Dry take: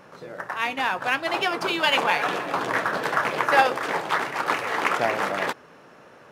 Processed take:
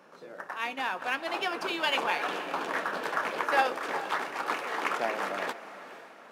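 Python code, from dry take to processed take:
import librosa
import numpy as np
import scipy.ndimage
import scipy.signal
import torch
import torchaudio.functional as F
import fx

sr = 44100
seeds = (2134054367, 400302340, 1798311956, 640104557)

y = scipy.signal.sosfilt(scipy.signal.butter(4, 190.0, 'highpass', fs=sr, output='sos'), x)
y = fx.notch(y, sr, hz=2000.0, q=27.0)
y = fx.echo_diffused(y, sr, ms=469, feedback_pct=45, wet_db=-14.0)
y = F.gain(torch.from_numpy(y), -7.0).numpy()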